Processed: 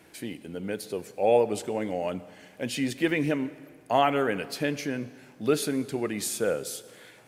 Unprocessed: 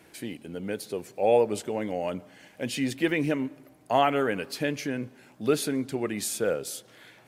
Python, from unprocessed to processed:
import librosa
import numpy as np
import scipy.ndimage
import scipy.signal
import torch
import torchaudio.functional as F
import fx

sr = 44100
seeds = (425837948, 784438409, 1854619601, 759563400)

y = fx.rev_plate(x, sr, seeds[0], rt60_s=1.9, hf_ratio=0.95, predelay_ms=0, drr_db=16.0)